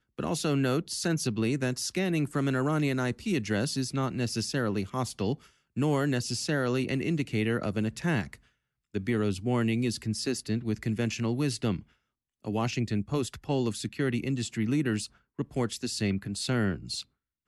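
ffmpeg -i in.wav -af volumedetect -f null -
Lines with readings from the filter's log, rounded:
mean_volume: -29.8 dB
max_volume: -17.6 dB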